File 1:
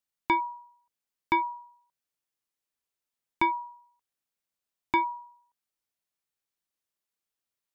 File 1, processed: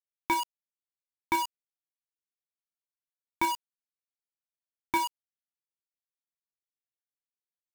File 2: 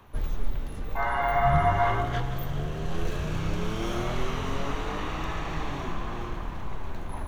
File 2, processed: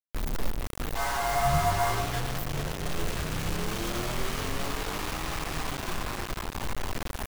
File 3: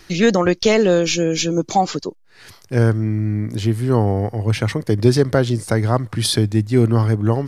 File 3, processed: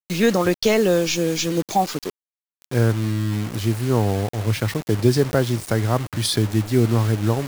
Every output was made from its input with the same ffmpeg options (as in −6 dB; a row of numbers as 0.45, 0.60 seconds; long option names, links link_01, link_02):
-af "acrusher=bits=4:mix=0:aa=0.000001,volume=-3dB"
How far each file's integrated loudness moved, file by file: −2.0, −1.0, −3.0 LU